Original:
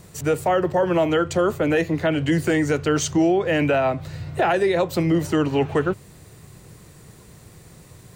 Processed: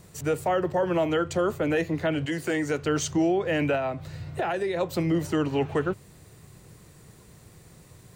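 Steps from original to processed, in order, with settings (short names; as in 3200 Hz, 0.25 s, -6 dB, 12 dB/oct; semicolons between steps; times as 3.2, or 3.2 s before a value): 2.25–2.83 HPF 500 Hz -> 140 Hz 6 dB/oct; 3.75–4.81 compressor 2:1, threshold -22 dBFS, peak gain reduction 4 dB; gain -5 dB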